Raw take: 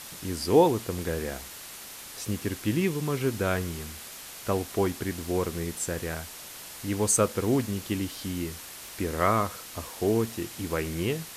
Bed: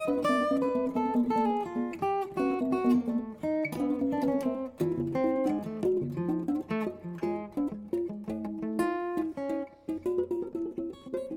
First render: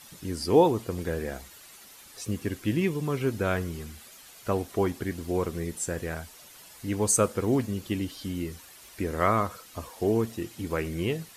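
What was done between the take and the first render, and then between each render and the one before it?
noise reduction 10 dB, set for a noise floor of -43 dBFS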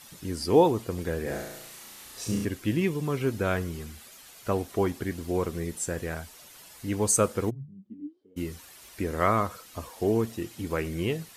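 1.23–2.45 s: flutter echo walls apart 5.9 m, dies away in 0.87 s; 7.49–8.36 s: band-pass filter 110 Hz -> 500 Hz, Q 20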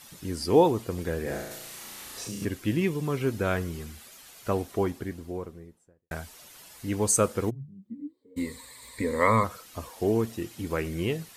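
1.51–2.42 s: three bands compressed up and down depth 70%; 4.50–6.11 s: studio fade out; 7.88–9.44 s: rippled EQ curve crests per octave 0.99, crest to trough 15 dB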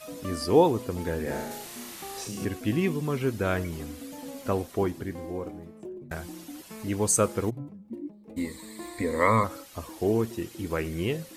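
add bed -12.5 dB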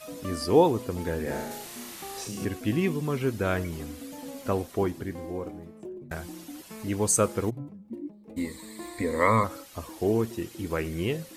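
no audible change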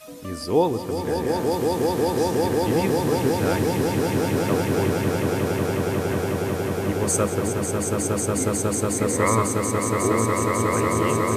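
echo with a slow build-up 182 ms, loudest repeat 8, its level -5 dB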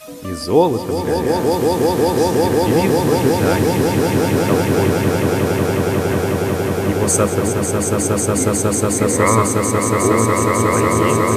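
trim +6.5 dB; peak limiter -1 dBFS, peak gain reduction 1 dB

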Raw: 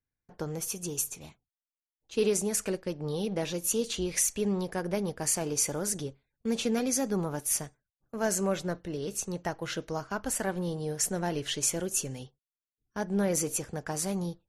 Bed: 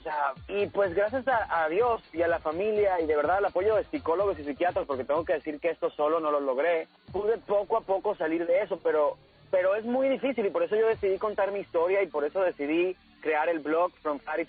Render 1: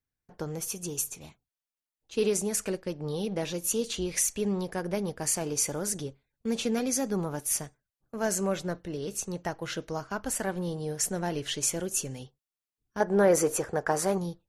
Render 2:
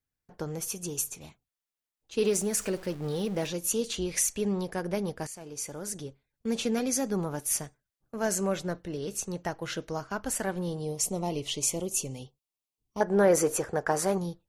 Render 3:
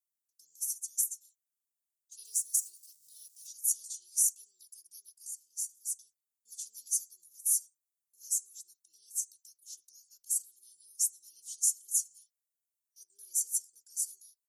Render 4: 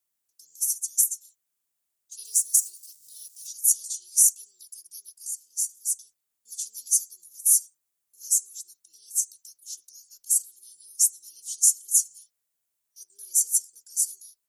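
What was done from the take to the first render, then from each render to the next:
13.00–14.18 s: high-order bell 810 Hz +9.5 dB 2.7 oct
2.25–3.47 s: jump at every zero crossing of -42 dBFS; 5.27–6.53 s: fade in, from -16.5 dB; 10.82–13.01 s: Butterworth band-stop 1.6 kHz, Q 1.6
inverse Chebyshev high-pass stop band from 2.1 kHz, stop band 60 dB; comb 2.6 ms, depth 91%
trim +9 dB

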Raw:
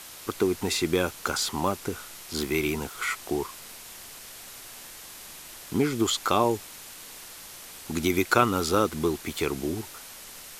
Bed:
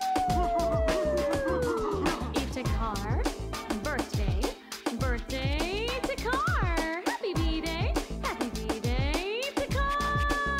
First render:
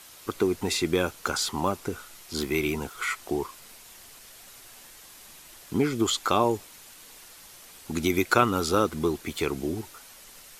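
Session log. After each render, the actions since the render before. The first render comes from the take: noise reduction 6 dB, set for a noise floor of -44 dBFS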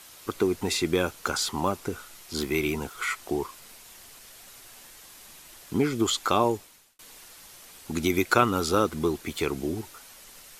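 6.47–6.99 s: fade out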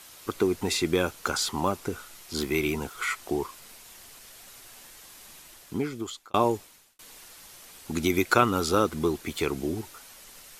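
5.39–6.34 s: fade out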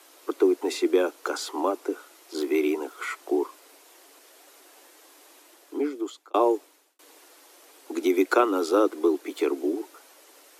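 steep high-pass 280 Hz 96 dB/octave; tilt shelf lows +6.5 dB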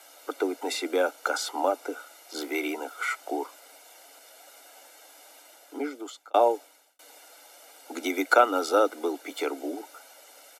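comb 1.4 ms, depth 73%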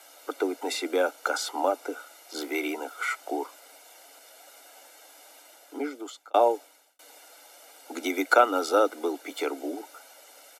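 no audible change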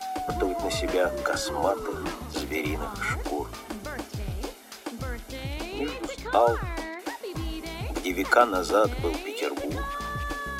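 add bed -4.5 dB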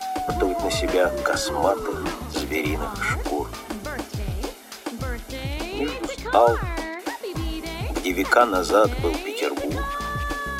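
trim +4.5 dB; peak limiter -3 dBFS, peak gain reduction 2.5 dB

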